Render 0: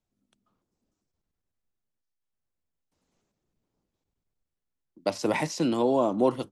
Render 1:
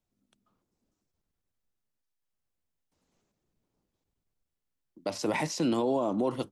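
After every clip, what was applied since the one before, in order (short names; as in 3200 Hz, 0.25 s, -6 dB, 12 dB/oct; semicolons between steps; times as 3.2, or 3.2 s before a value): limiter -19.5 dBFS, peak gain reduction 7.5 dB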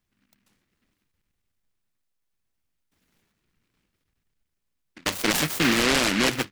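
noise-modulated delay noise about 1900 Hz, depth 0.4 ms; gain +6 dB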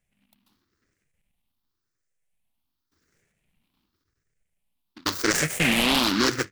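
moving spectral ripple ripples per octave 0.51, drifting +0.9 Hz, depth 11 dB; gain -1.5 dB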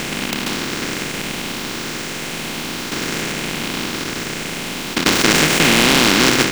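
per-bin compression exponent 0.2; gain +2.5 dB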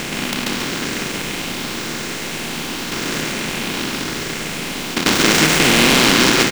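echo 0.138 s -4 dB; gain -1 dB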